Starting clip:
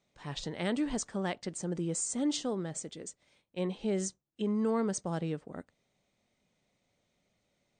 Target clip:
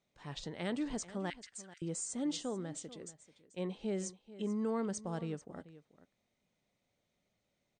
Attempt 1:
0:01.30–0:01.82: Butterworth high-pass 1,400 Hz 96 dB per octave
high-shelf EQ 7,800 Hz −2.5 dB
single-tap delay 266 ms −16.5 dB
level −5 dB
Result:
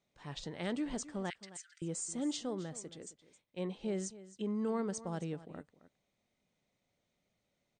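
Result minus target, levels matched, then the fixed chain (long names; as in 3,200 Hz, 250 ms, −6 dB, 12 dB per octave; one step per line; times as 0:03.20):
echo 171 ms early
0:01.30–0:01.82: Butterworth high-pass 1,400 Hz 96 dB per octave
high-shelf EQ 7,800 Hz −2.5 dB
single-tap delay 437 ms −16.5 dB
level −5 dB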